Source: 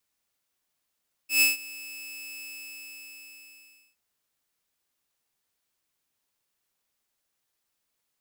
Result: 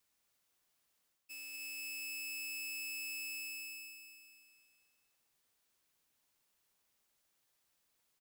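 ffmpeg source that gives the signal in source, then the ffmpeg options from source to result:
-f lavfi -i "aevalsrc='0.2*(2*mod(2610*t,1)-1)':duration=2.67:sample_rate=44100,afade=type=in:duration=0.124,afade=type=out:start_time=0.124:duration=0.152:silence=0.0794,afade=type=out:start_time=1.12:duration=1.55"
-af "areverse,acompressor=threshold=-37dB:ratio=6,areverse,alimiter=level_in=19dB:limit=-24dB:level=0:latency=1:release=240,volume=-19dB,aecho=1:1:241|482|723|964|1205|1446:0.398|0.215|0.116|0.0627|0.0339|0.0183"

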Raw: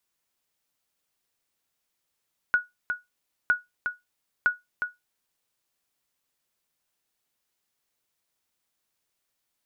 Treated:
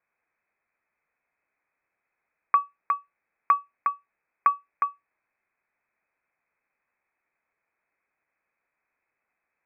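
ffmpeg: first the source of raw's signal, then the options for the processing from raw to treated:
-f lavfi -i "aevalsrc='0.224*(sin(2*PI*1460*mod(t,0.96))*exp(-6.91*mod(t,0.96)/0.18)+0.447*sin(2*PI*1460*max(mod(t,0.96)-0.36,0))*exp(-6.91*max(mod(t,0.96)-0.36,0)/0.18))':duration=2.88:sample_rate=44100"
-filter_complex "[0:a]asplit=2[link_01][link_02];[link_02]alimiter=limit=-21.5dB:level=0:latency=1:release=95,volume=-1.5dB[link_03];[link_01][link_03]amix=inputs=2:normalize=0,lowpass=frequency=2200:width_type=q:width=0.5098,lowpass=frequency=2200:width_type=q:width=0.6013,lowpass=frequency=2200:width_type=q:width=0.9,lowpass=frequency=2200:width_type=q:width=2.563,afreqshift=-2600,aemphasis=mode=production:type=75kf"

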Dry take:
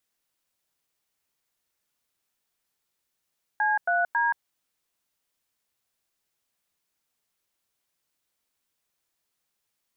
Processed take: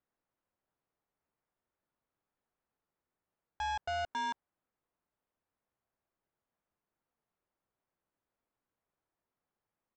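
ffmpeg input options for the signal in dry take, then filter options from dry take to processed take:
-f lavfi -i "aevalsrc='0.0668*clip(min(mod(t,0.274),0.176-mod(t,0.274))/0.002,0,1)*(eq(floor(t/0.274),0)*(sin(2*PI*852*mod(t,0.274))+sin(2*PI*1633*mod(t,0.274)))+eq(floor(t/0.274),1)*(sin(2*PI*697*mod(t,0.274))+sin(2*PI*1477*mod(t,0.274)))+eq(floor(t/0.274),2)*(sin(2*PI*941*mod(t,0.274))+sin(2*PI*1633*mod(t,0.274))))':duration=0.822:sample_rate=44100"
-af "lowpass=1200,aresample=16000,asoftclip=type=tanh:threshold=-33dB,aresample=44100"

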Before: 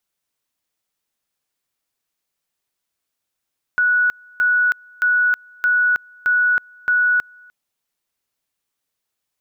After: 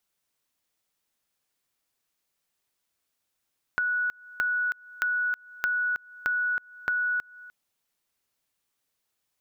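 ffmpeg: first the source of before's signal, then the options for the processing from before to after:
-f lavfi -i "aevalsrc='pow(10,(-13-29.5*gte(mod(t,0.62),0.32))/20)*sin(2*PI*1470*t)':duration=3.72:sample_rate=44100"
-af "acompressor=threshold=-28dB:ratio=4"

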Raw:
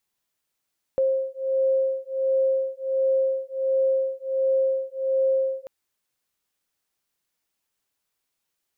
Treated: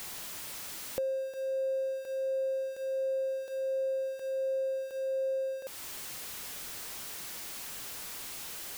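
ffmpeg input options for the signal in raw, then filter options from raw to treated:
-f lavfi -i "aevalsrc='0.0668*(sin(2*PI*531*t)+sin(2*PI*532.4*t))':duration=4.69:sample_rate=44100"
-af "aeval=exprs='val(0)+0.5*0.0178*sgn(val(0))':channel_layout=same,acompressor=threshold=-40dB:ratio=2"

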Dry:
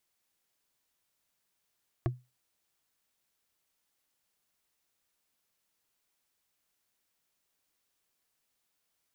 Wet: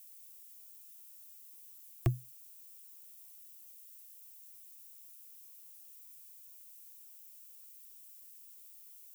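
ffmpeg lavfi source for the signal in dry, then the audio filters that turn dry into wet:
-f lavfi -i "aevalsrc='0.0708*pow(10,-3*t/0.25)*sin(2*PI*125*t)+0.0501*pow(10,-3*t/0.074)*sin(2*PI*344.6*t)+0.0355*pow(10,-3*t/0.033)*sin(2*PI*675.5*t)+0.0251*pow(10,-3*t/0.018)*sin(2*PI*1116.6*t)+0.0178*pow(10,-3*t/0.011)*sin(2*PI*1667.5*t)':duration=0.45:sample_rate=44100"
-filter_complex "[0:a]aemphasis=mode=production:type=50kf,acrossover=split=160|1200[link_01][link_02][link_03];[link_01]acontrast=37[link_04];[link_04][link_02][link_03]amix=inputs=3:normalize=0,aexciter=amount=2.7:drive=2.9:freq=2300"

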